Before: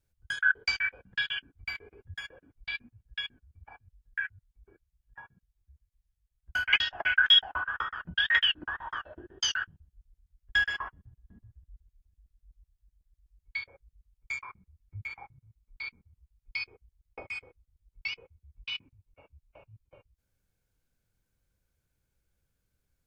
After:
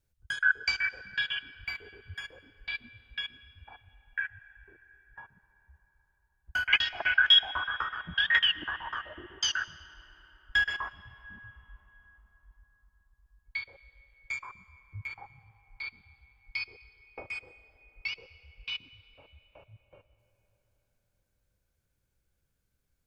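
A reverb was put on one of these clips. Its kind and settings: digital reverb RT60 4.6 s, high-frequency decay 0.5×, pre-delay 60 ms, DRR 16 dB

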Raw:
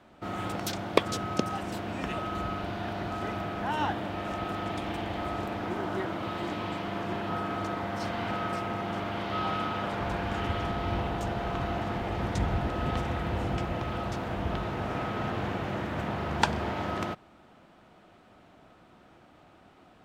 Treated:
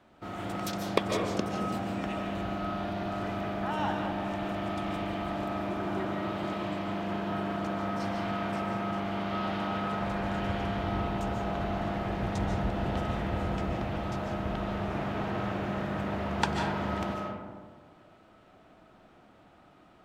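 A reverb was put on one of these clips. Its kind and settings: digital reverb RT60 1.6 s, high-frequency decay 0.35×, pre-delay 0.105 s, DRR 1 dB; gain -4 dB

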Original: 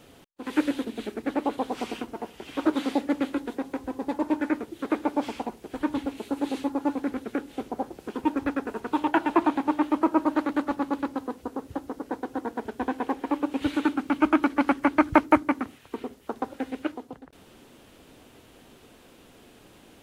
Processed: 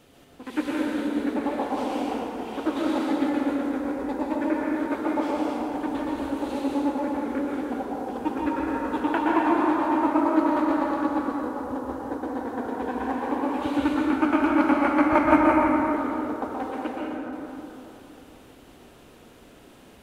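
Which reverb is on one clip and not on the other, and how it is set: plate-style reverb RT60 3.2 s, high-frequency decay 0.4×, pre-delay 0.11 s, DRR -4.5 dB; gain -3.5 dB

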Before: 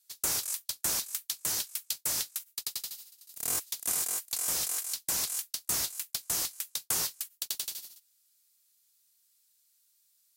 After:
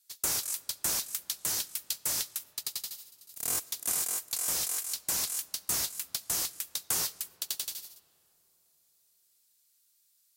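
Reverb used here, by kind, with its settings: digital reverb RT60 3.9 s, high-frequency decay 0.4×, pre-delay 30 ms, DRR 19 dB

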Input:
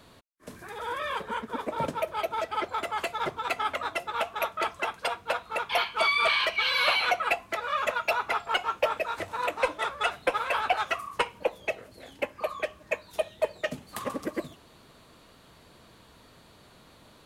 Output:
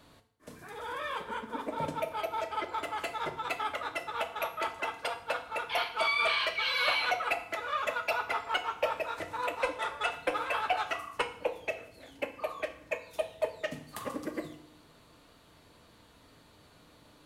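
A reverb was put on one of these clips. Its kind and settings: FDN reverb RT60 0.64 s, low-frequency decay 1.25×, high-frequency decay 0.95×, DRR 6.5 dB; gain -5 dB

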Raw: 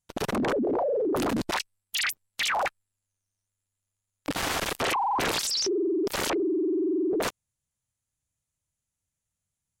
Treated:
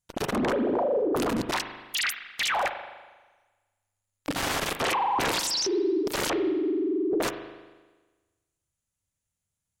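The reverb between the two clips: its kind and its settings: spring tank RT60 1.3 s, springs 39 ms, chirp 70 ms, DRR 8 dB

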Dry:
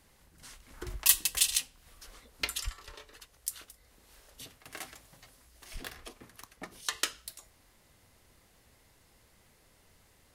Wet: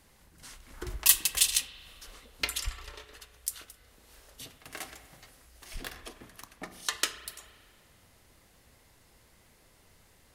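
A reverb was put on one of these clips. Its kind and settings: spring tank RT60 2 s, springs 33 ms, chirp 35 ms, DRR 11.5 dB; gain +2 dB

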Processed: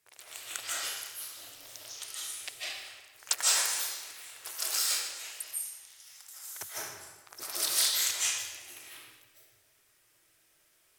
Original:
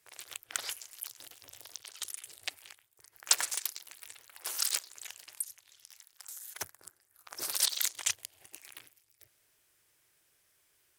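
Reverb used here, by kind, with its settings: digital reverb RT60 1.2 s, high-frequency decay 0.9×, pre-delay 0.115 s, DRR -8.5 dB; gain -4.5 dB

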